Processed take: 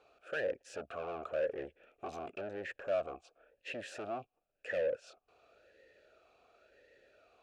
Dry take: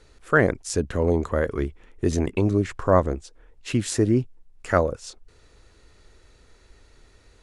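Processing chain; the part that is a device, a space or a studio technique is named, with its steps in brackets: talk box (valve stage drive 30 dB, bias 0.2; talking filter a-e 0.94 Hz); trim +7 dB

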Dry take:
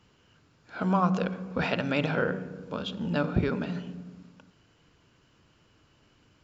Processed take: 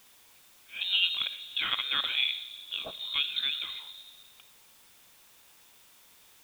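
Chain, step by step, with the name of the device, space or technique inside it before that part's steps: scrambled radio voice (band-pass 300–2900 Hz; frequency inversion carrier 3.9 kHz; white noise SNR 24 dB)

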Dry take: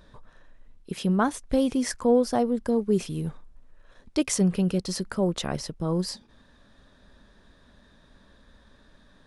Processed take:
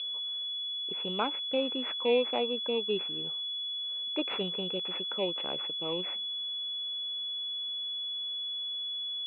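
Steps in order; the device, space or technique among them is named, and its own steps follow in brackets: toy sound module (decimation joined by straight lines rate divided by 4×; class-D stage that switches slowly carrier 3.4 kHz; cabinet simulation 520–3600 Hz, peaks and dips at 700 Hz -7 dB, 1.1 kHz -5 dB, 1.7 kHz -8 dB, 2.6 kHz +10 dB)

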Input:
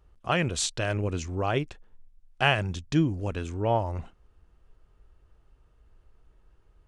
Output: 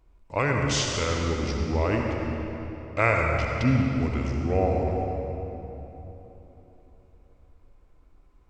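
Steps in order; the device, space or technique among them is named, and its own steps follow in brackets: slowed and reverbed (tape speed -19%; reverberation RT60 3.6 s, pre-delay 60 ms, DRR 0.5 dB)

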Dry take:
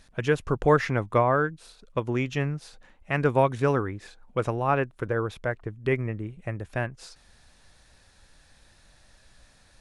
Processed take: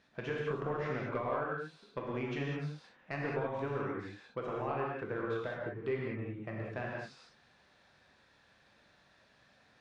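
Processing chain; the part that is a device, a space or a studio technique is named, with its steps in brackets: AM radio (band-pass 150–3400 Hz; compression 6:1, threshold -27 dBFS, peak gain reduction 12.5 dB; saturation -18.5 dBFS, distortion -22 dB); gated-style reverb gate 230 ms flat, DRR -3.5 dB; trim -8 dB

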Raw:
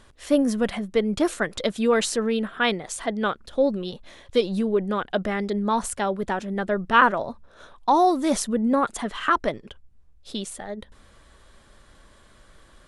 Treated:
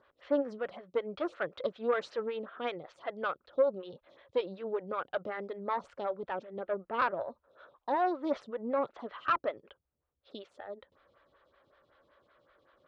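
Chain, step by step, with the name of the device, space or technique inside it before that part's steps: 6.59–7.20 s: distance through air 200 m; vibe pedal into a guitar amplifier (lamp-driven phase shifter 5.3 Hz; valve stage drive 15 dB, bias 0.5; cabinet simulation 95–4100 Hz, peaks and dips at 210 Hz -10 dB, 550 Hz +7 dB, 1.3 kHz +5 dB); trim -7.5 dB

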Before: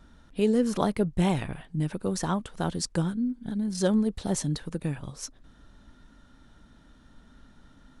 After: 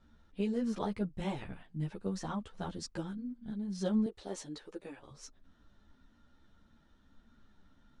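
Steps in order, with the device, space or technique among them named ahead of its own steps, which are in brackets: string-machine ensemble chorus (three-phase chorus; low-pass 6.5 kHz 12 dB/octave); 4.06–5.11 s: resonant low shelf 260 Hz -12 dB, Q 1.5; trim -7 dB

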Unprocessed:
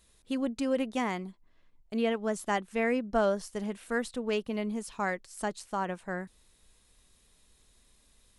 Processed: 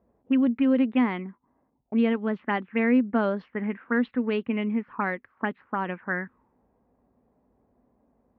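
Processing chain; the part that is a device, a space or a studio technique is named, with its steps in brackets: envelope filter bass rig (touch-sensitive low-pass 680–4400 Hz up, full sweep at -26 dBFS; cabinet simulation 61–2400 Hz, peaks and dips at 74 Hz -10 dB, 250 Hz +10 dB, 660 Hz -6 dB); trim +2.5 dB

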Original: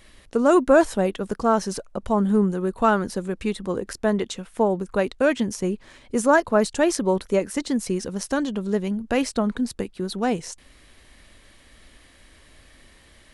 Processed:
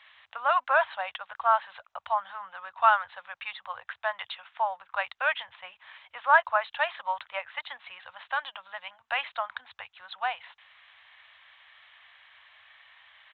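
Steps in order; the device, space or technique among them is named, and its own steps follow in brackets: inverse Chebyshev band-stop 160–430 Hz, stop band 50 dB; Bluetooth headset (high-pass 170 Hz 24 dB/octave; resampled via 8 kHz; trim +1.5 dB; SBC 64 kbps 16 kHz)

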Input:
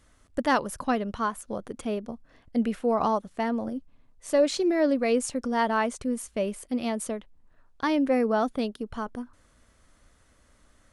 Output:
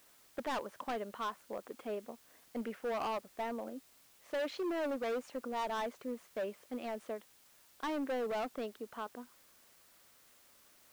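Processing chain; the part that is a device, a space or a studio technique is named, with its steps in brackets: aircraft radio (band-pass 370–2500 Hz; hard clipper -27 dBFS, distortion -7 dB; white noise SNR 24 dB); trim -6 dB

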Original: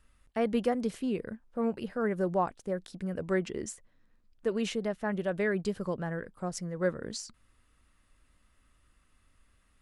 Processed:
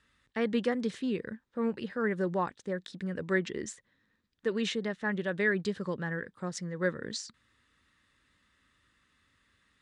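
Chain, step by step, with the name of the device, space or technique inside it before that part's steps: car door speaker (cabinet simulation 98–8100 Hz, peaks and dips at 680 Hz -9 dB, 1.8 kHz +8 dB, 3.7 kHz +8 dB)

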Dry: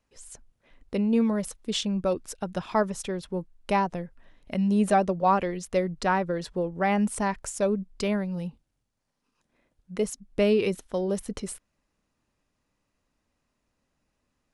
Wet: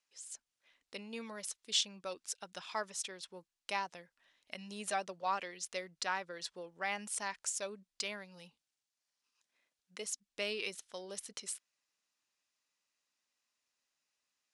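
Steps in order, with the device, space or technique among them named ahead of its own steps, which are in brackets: piezo pickup straight into a mixer (low-pass 6 kHz 12 dB/octave; differentiator); trim +5 dB

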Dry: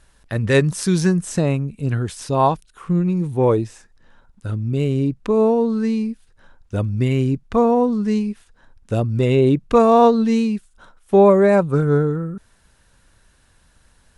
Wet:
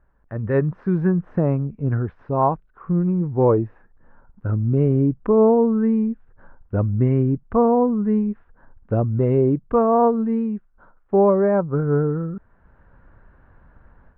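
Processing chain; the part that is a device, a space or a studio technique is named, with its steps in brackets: action camera in a waterproof case (low-pass 1.5 kHz 24 dB/octave; level rider gain up to 13 dB; trim -6.5 dB; AAC 128 kbps 48 kHz)

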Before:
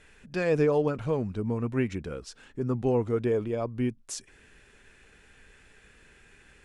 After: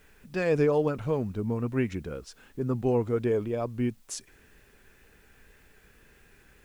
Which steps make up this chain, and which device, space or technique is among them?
plain cassette with noise reduction switched in (tape noise reduction on one side only decoder only; wow and flutter 29 cents; white noise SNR 38 dB)

